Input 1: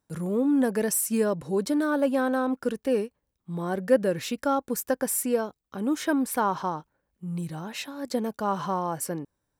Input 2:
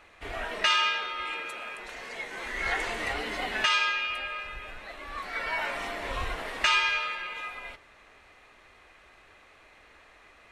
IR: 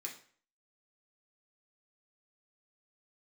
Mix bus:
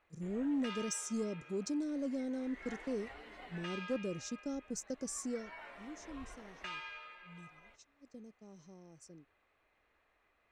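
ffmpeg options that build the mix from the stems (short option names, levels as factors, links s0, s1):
-filter_complex "[0:a]agate=range=0.141:threshold=0.0224:ratio=16:detection=peak,firequalizer=gain_entry='entry(350,0);entry(1000,-22);entry(6200,10);entry(12000,-26)':delay=0.05:min_phase=1,volume=0.316,afade=t=out:st=5.31:d=0.29:silence=0.237137[s0];[1:a]highshelf=f=3500:g=-9.5,volume=0.126[s1];[s0][s1]amix=inputs=2:normalize=0,asoftclip=type=tanh:threshold=0.0447"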